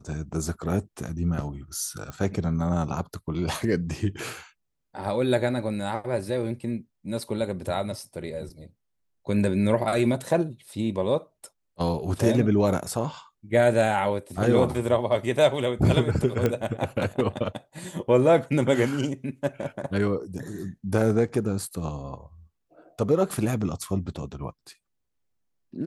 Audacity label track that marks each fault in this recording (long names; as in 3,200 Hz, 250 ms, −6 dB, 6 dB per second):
2.100000	2.100000	click −22 dBFS
16.460000	16.460000	click −11 dBFS